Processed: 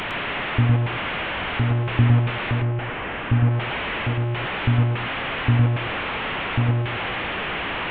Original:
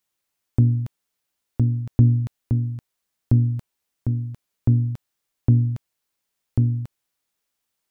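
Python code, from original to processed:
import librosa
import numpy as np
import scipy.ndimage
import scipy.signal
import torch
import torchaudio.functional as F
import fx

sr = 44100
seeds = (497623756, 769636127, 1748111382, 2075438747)

y = fx.delta_mod(x, sr, bps=16000, step_db=-18.5)
y = fx.air_absorb(y, sr, metres=330.0, at=(2.54, 3.51))
y = y + 10.0 ** (-5.0 / 20.0) * np.pad(y, (int(109 * sr / 1000.0), 0))[:len(y)]
y = y * librosa.db_to_amplitude(-2.5)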